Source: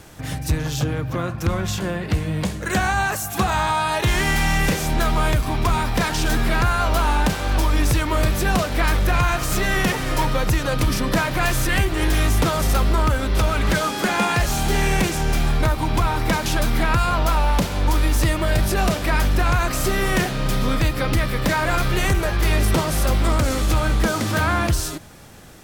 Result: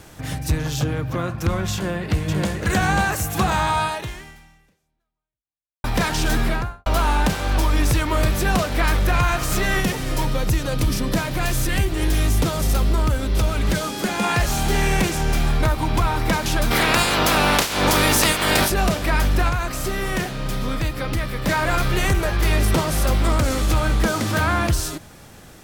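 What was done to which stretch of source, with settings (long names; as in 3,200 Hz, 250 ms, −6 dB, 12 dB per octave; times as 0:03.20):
0:01.74–0:02.61: delay throw 540 ms, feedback 55%, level −2.5 dB
0:03.84–0:05.84: fade out exponential
0:06.40–0:06.86: fade out and dull
0:09.80–0:14.24: parametric band 1,300 Hz −6 dB 2.3 octaves
0:16.70–0:18.69: ceiling on every frequency bin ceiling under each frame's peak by 24 dB
0:19.49–0:21.47: clip gain −4 dB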